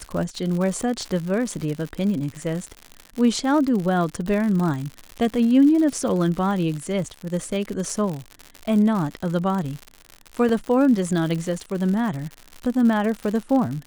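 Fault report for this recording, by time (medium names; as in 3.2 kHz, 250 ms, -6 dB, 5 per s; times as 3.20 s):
crackle 110 per s -27 dBFS
10.49 s: dropout 3.1 ms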